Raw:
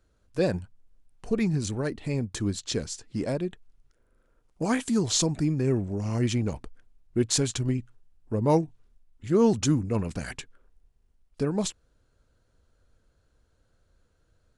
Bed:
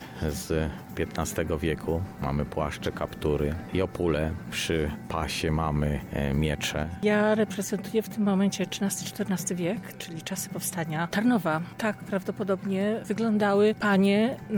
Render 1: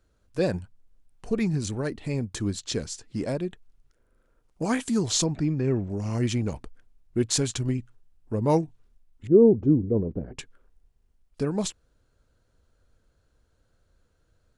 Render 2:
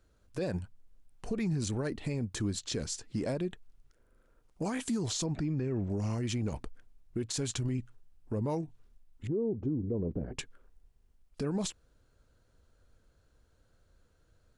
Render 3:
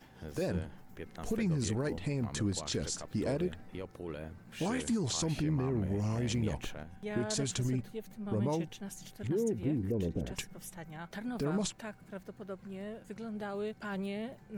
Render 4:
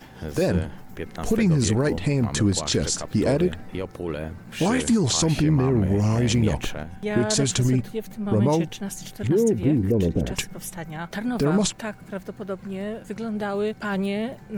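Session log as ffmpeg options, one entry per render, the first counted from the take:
-filter_complex "[0:a]asettb=1/sr,asplit=3[a][b][c];[a]atrim=end=5.244[d];[b]atrim=start=5.24:end=5.9,asetpts=PTS-STARTPTS,afade=t=in:d=0.004:c=qsin,afade=t=out:st=0.656:d=0.004:c=qsin,lowpass=4.2k[e];[c]atrim=start=5.896[f];[d][e]acrossfade=d=0.004:c1=hsin:c2=qsin[g];[g][f]acrossfade=d=0.004:c1=qsin:c2=hsin,asettb=1/sr,asplit=3[h][i][j];[h]atrim=end=9.274[k];[i]atrim=start=9.27:end=10.38,asetpts=PTS-STARTPTS,afade=t=in:d=0.004:c=qsin,afade=t=out:st=1.106:d=0.004:c=qsin,lowpass=f=420:t=q:w=2.3[l];[j]atrim=start=10.376[m];[k][l]acrossfade=d=0.004:c1=hsin:c2=qsin[n];[n][m]acrossfade=d=0.004:c1=qsin:c2=hsin"
-af "acompressor=threshold=-25dB:ratio=6,alimiter=level_in=1dB:limit=-24dB:level=0:latency=1:release=47,volume=-1dB"
-filter_complex "[1:a]volume=-16dB[a];[0:a][a]amix=inputs=2:normalize=0"
-af "volume=12dB"

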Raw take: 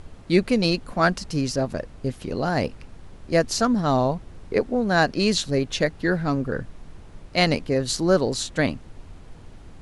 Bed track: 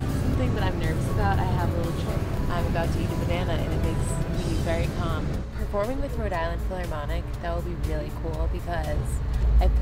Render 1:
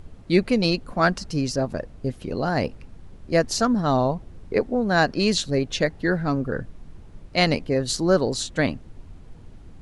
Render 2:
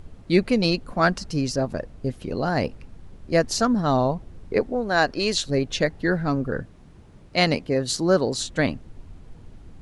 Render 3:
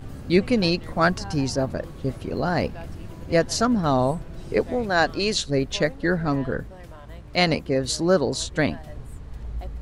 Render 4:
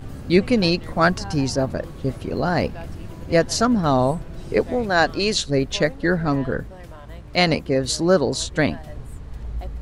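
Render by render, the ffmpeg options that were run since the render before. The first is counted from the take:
-af "afftdn=nr=6:nf=-45"
-filter_complex "[0:a]asettb=1/sr,asplit=3[a][b][c];[a]atrim=end=4.724[d];[b]atrim=start=4.72:end=5.5,asetpts=PTS-STARTPTS,afade=t=in:d=0.004:c=qsin,afade=t=out:st=0.776:d=0.004:c=qsin,equalizer=f=180:w=1.4:g=-8.5[e];[c]atrim=start=5.496[f];[d][e]acrossfade=d=0.004:c1=hsin:c2=qsin[g];[g][f]acrossfade=d=0.004:c1=qsin:c2=hsin,asettb=1/sr,asplit=3[h][i][j];[h]atrim=end=6.614[k];[i]atrim=start=6.61:end=8.39,asetpts=PTS-STARTPTS,afade=t=in:d=0.004:c=qsin,afade=t=out:st=1.776:d=0.004:c=qsin,highpass=f=78:p=1[l];[j]atrim=start=8.386[m];[k][l]acrossfade=d=0.004:c1=hsin:c2=qsin[n];[n][m]acrossfade=d=0.004:c1=qsin:c2=hsin"
-filter_complex "[1:a]volume=-12.5dB[a];[0:a][a]amix=inputs=2:normalize=0"
-af "volume=2.5dB,alimiter=limit=-3dB:level=0:latency=1"

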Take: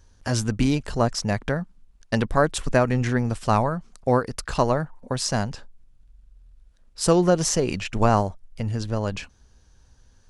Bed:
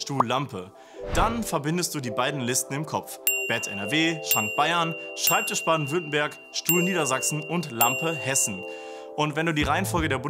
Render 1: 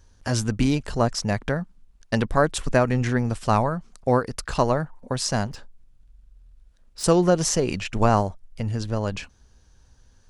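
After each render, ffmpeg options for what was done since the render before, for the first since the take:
-filter_complex "[0:a]asettb=1/sr,asplit=3[a][b][c];[a]atrim=end=5.474[d];[b]atrim=start=5.47:end=7.04,asetpts=PTS-STARTPTS,afade=t=in:d=0.004:c=qsin,afade=t=out:st=1.566:d=0.004:c=qsin,volume=31.5dB,asoftclip=hard,volume=-31.5dB[e];[c]atrim=start=7.036[f];[d][e]acrossfade=d=0.004:c1=hsin:c2=qsin[g];[g][f]acrossfade=d=0.004:c1=qsin:c2=hsin"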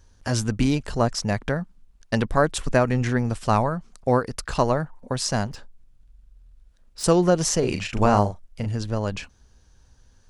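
-filter_complex "[0:a]asettb=1/sr,asplit=3[a][b][c];[a]atrim=end=7.594[d];[b]atrim=start=7.59:end=8.66,asetpts=PTS-STARTPTS,afade=t=in:d=0.004:c=qsin,afade=t=out:st=1.066:d=0.004:c=qsin,asplit=2[e][f];[f]adelay=39,volume=-6.5dB[g];[e][g]amix=inputs=2:normalize=0,atrim=end_sample=47187[h];[c]atrim=start=8.656[i];[d][h]acrossfade=d=0.004:c1=hsin:c2=qsin[j];[j][i]acrossfade=d=0.004:c1=qsin:c2=hsin"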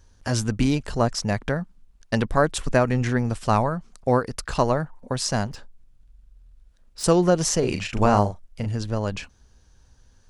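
-af anull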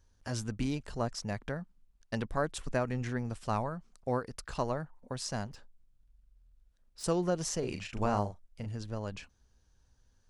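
-af "volume=-12dB"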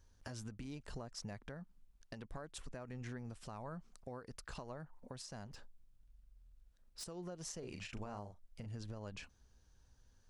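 -af "acompressor=threshold=-39dB:ratio=16,alimiter=level_in=11.5dB:limit=-24dB:level=0:latency=1:release=223,volume=-11.5dB"

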